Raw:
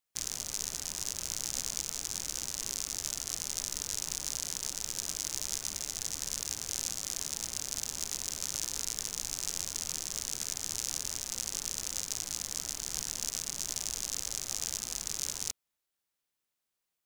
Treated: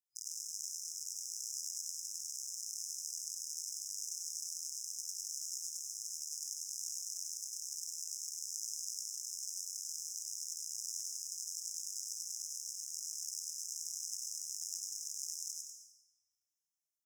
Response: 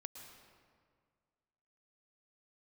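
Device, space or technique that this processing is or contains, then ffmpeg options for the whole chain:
PA in a hall: -filter_complex "[0:a]highpass=f=200:w=0.5412,highpass=f=200:w=1.3066,equalizer=f=2.2k:t=o:w=2.7:g=5,aecho=1:1:91:0.562,aecho=1:1:103:0.668[a];[1:a]atrim=start_sample=2205[b];[a][b]afir=irnorm=-1:irlink=0,afftfilt=real='re*(1-between(b*sr/4096,120,5000))':imag='im*(1-between(b*sr/4096,120,5000))':win_size=4096:overlap=0.75,volume=-5dB"

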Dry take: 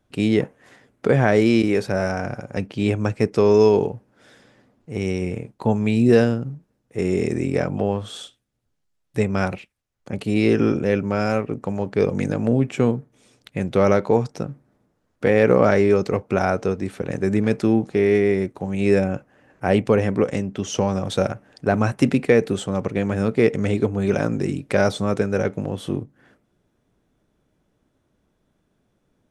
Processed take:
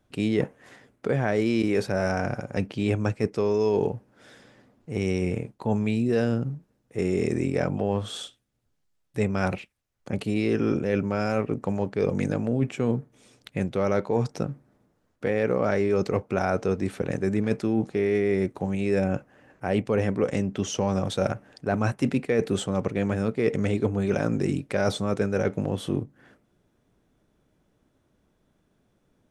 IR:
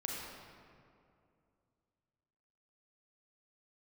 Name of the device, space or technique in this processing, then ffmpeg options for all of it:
compression on the reversed sound: -af "areverse,acompressor=threshold=-20dB:ratio=6,areverse"

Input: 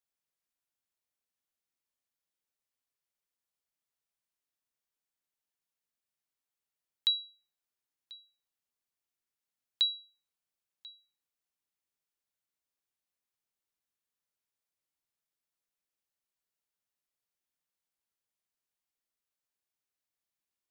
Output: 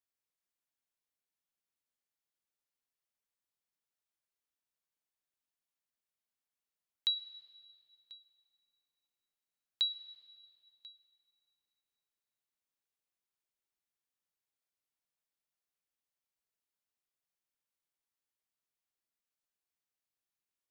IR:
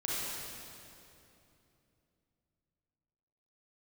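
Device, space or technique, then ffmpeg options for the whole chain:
filtered reverb send: -filter_complex "[0:a]asplit=2[a][b];[b]highpass=f=300:p=1,lowpass=5k[c];[1:a]atrim=start_sample=2205[d];[c][d]afir=irnorm=-1:irlink=0,volume=-18.5dB[e];[a][e]amix=inputs=2:normalize=0,volume=-4dB"

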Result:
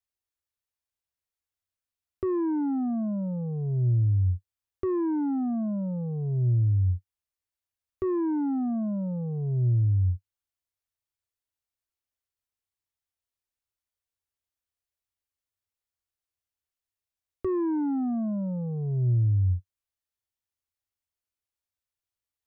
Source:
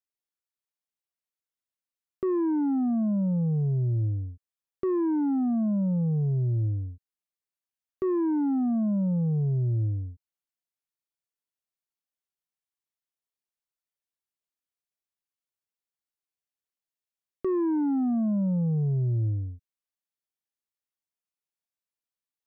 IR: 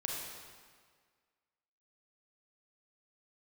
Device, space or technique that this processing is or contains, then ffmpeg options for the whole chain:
car stereo with a boomy subwoofer: -af "lowshelf=f=120:t=q:w=3:g=8,alimiter=limit=-19dB:level=0:latency=1:release=25"

